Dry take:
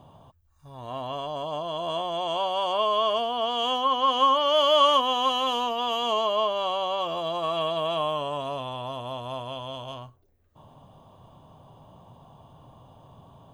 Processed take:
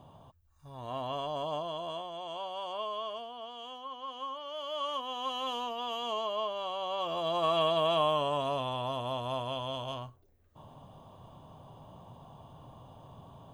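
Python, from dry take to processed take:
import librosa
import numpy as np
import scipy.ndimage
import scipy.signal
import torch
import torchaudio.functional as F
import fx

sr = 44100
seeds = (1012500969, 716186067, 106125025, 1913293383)

y = fx.gain(x, sr, db=fx.line((1.52, -3.0), (2.12, -12.0), (2.8, -12.0), (3.71, -19.0), (4.59, -19.0), (5.47, -9.0), (6.73, -9.0), (7.44, -0.5)))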